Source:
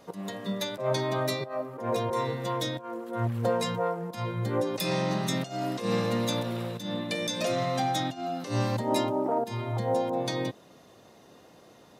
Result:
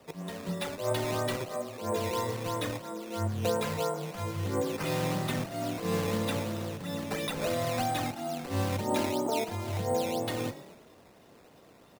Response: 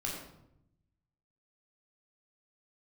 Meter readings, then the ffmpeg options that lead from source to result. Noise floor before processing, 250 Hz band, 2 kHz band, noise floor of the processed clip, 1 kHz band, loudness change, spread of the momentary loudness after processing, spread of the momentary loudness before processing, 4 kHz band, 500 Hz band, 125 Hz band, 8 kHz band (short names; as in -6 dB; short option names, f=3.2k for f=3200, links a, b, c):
-55 dBFS, -2.5 dB, -1.0 dB, -57 dBFS, -3.0 dB, -2.5 dB, 6 LU, 6 LU, -3.5 dB, -2.5 dB, -2.0 dB, 0.0 dB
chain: -filter_complex "[0:a]asplit=6[a][b][c][d][e][f];[b]adelay=112,afreqshift=37,volume=-14.5dB[g];[c]adelay=224,afreqshift=74,volume=-19.7dB[h];[d]adelay=336,afreqshift=111,volume=-24.9dB[i];[e]adelay=448,afreqshift=148,volume=-30.1dB[j];[f]adelay=560,afreqshift=185,volume=-35.3dB[k];[a][g][h][i][j][k]amix=inputs=6:normalize=0,acrusher=samples=10:mix=1:aa=0.000001:lfo=1:lforange=10:lforate=3,afreqshift=-18,volume=-2.5dB"